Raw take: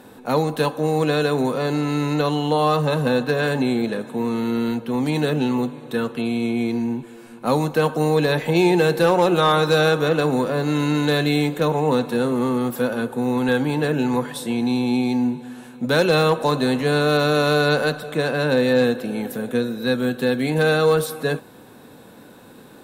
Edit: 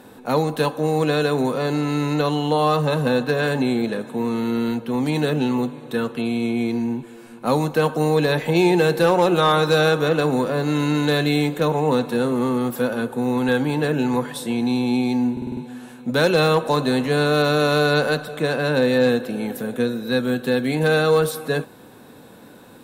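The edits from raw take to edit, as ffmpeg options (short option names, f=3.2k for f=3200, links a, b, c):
-filter_complex "[0:a]asplit=6[a][b][c][d][e][f];[a]atrim=end=15.372[g];[b]atrim=start=15.318:end=15.372[h];[c]atrim=start=15.318:end=15.372[i];[d]atrim=start=15.318:end=15.372[j];[e]atrim=start=15.318:end=15.372[k];[f]atrim=start=15.318[l];[g][h]acrossfade=d=0.004:c1=hsin:c2=hsin[m];[m][i]acrossfade=d=0.004:c1=hsin:c2=hsin[n];[n][j]acrossfade=d=0.004:c1=hsin:c2=hsin[o];[o][k]acrossfade=d=0.004:c1=hsin:c2=hsin[p];[p][l]acrossfade=d=0.004:c1=hsin:c2=hsin"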